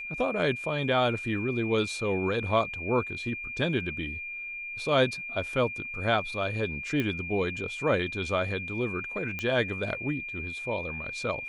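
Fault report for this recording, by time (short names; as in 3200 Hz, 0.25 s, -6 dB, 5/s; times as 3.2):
tone 2400 Hz -35 dBFS
7 pop -17 dBFS
9.39 pop -19 dBFS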